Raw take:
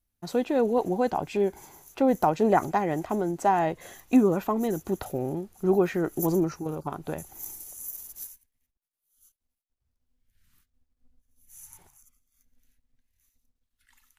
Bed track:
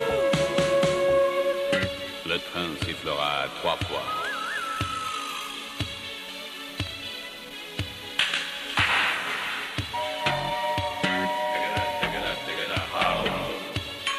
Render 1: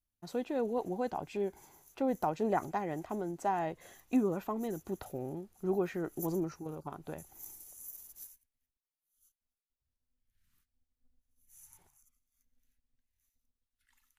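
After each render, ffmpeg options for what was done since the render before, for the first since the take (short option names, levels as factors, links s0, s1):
-af "volume=0.335"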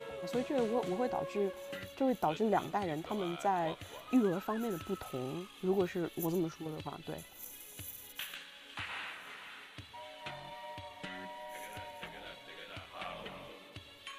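-filter_complex "[1:a]volume=0.106[s0];[0:a][s0]amix=inputs=2:normalize=0"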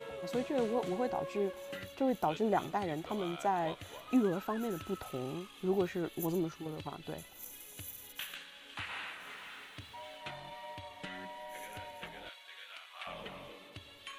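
-filter_complex "[0:a]asettb=1/sr,asplit=3[s0][s1][s2];[s0]atrim=end=6.024[s3];[s1]atrim=start=6.02:end=6.75,asetpts=PTS-STARTPTS,afade=t=in:d=0.004:c=qsin,afade=t=out:st=0.726:d=0.004:c=qsin,bandreject=f=5600:w=12[s4];[s2]atrim=start=6.746[s5];[s3][s4]acrossfade=d=0.004:c1=hsin:c2=qsin[s6];[s6][s5]acrossfade=d=0.004:c1=qsin:c2=hsin,asettb=1/sr,asplit=3[s7][s8][s9];[s7]atrim=end=9.204[s10];[s8]atrim=start=9.2:end=10.18,asetpts=PTS-STARTPTS,afade=t=in:d=0.004:c=qsin,afade=t=out:st=0.976:d=0.004:c=qsin,aeval=exprs='val(0)+0.5*0.00106*sgn(val(0))':c=same[s11];[s9]atrim=start=10.176[s12];[s10][s11]acrossfade=d=0.004:c1=hsin:c2=qsin[s13];[s13][s12]acrossfade=d=0.004:c1=qsin:c2=hsin,asettb=1/sr,asplit=3[s14][s15][s16];[s14]atrim=end=12.294[s17];[s15]atrim=start=12.29:end=13.07,asetpts=PTS-STARTPTS,afade=t=in:d=0.004:c=qsin,afade=t=out:st=0.776:d=0.004:c=qsin,highpass=1100[s18];[s16]atrim=start=13.066[s19];[s17][s18]acrossfade=d=0.004:c1=hsin:c2=qsin[s20];[s20][s19]acrossfade=d=0.004:c1=qsin:c2=hsin"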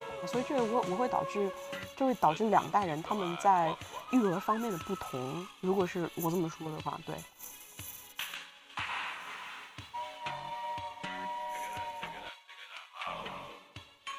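-af "agate=range=0.0224:threshold=0.00447:ratio=3:detection=peak,equalizer=f=160:t=o:w=0.67:g=3,equalizer=f=1000:t=o:w=0.67:g=11,equalizer=f=2500:t=o:w=0.67:g=4,equalizer=f=6300:t=o:w=0.67:g=7"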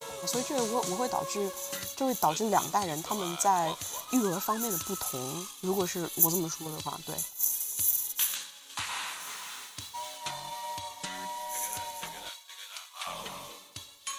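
-af "aexciter=amount=6.3:drive=5.6:freq=3900"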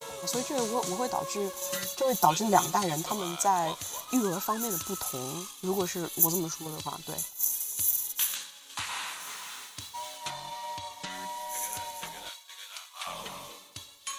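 -filter_complex "[0:a]asettb=1/sr,asplit=3[s0][s1][s2];[s0]atrim=end=1.614[s3];[s1]atrim=start=1.61:end=3.12,asetpts=PTS-STARTPTS,afade=t=in:d=0.004:c=qsin,afade=t=out:st=1.506:d=0.004:c=qsin,aecho=1:1:5.6:1,atrim=end_sample=66591[s4];[s2]atrim=start=3.116[s5];[s3][s4]acrossfade=d=0.004:c1=hsin:c2=qsin[s6];[s6][s5]acrossfade=d=0.004:c1=qsin:c2=hsin,asettb=1/sr,asplit=3[s7][s8][s9];[s7]atrim=end=10.304[s10];[s8]atrim=start=10.3:end=11.1,asetpts=PTS-STARTPTS,afade=t=in:d=0.004:c=qsin,afade=t=out:st=0.796:d=0.004:c=qsin,acrossover=split=6700[s11][s12];[s12]acompressor=threshold=0.00224:ratio=4:attack=1:release=60[s13];[s11][s13]amix=inputs=2:normalize=0[s14];[s9]atrim=start=11.096[s15];[s10][s14]acrossfade=d=0.004:c1=hsin:c2=qsin[s16];[s16][s15]acrossfade=d=0.004:c1=qsin:c2=hsin"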